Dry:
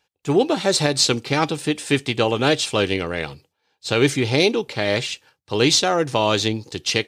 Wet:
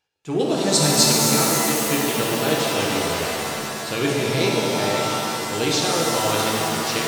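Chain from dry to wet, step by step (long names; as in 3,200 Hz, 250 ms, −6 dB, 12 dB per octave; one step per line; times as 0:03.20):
0:00.39–0:01.03: bass and treble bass +9 dB, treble +12 dB
reverb with rising layers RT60 3.2 s, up +7 semitones, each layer −2 dB, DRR −2.5 dB
level −8 dB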